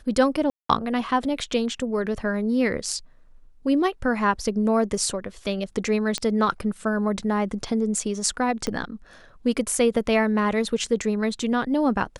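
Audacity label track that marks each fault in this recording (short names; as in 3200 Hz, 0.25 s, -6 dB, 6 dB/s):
0.500000	0.690000	gap 0.194 s
6.180000	6.180000	pop -12 dBFS
8.670000	8.670000	pop -13 dBFS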